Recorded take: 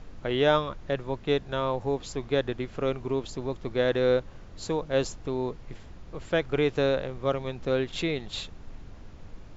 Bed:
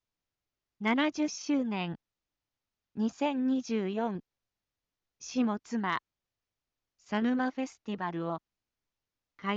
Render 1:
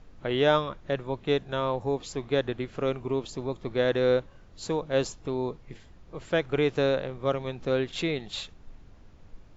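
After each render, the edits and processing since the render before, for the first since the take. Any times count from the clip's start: noise print and reduce 7 dB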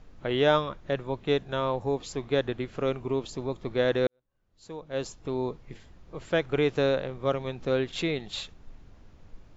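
4.07–5.36 s: fade in quadratic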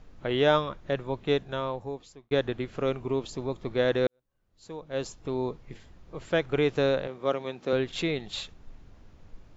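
1.34–2.31 s: fade out; 7.07–7.73 s: high-pass 210 Hz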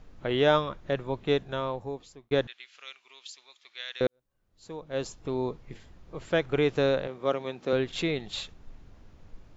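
2.47–4.01 s: Butterworth band-pass 4.2 kHz, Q 0.81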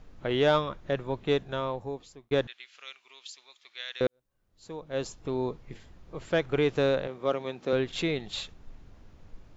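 saturation -12 dBFS, distortion -24 dB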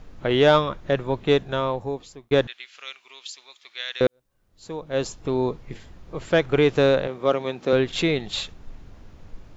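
trim +7 dB

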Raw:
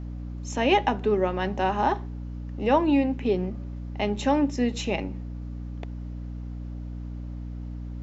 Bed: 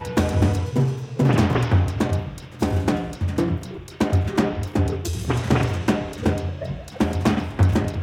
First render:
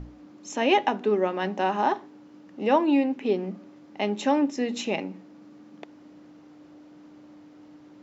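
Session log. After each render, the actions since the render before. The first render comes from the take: hum notches 60/120/180/240 Hz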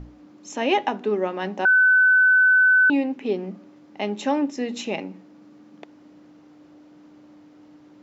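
1.65–2.90 s: bleep 1.51 kHz -12.5 dBFS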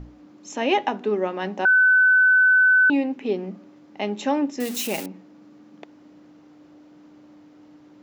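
4.60–5.06 s: zero-crossing glitches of -21.5 dBFS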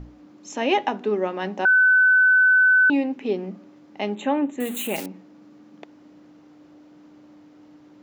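4.15–4.96 s: Butterworth band-stop 5.2 kHz, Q 1.4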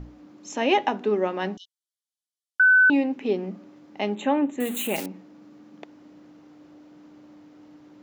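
1.57–2.60 s: brick-wall FIR band-pass 2.9–12 kHz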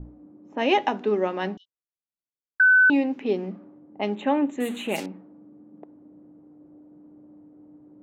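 level-controlled noise filter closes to 450 Hz, open at -21 dBFS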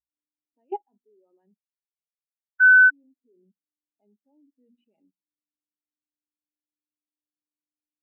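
level held to a coarse grid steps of 18 dB; spectral contrast expander 2.5:1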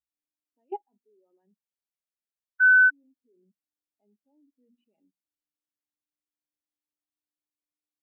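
trim -3.5 dB

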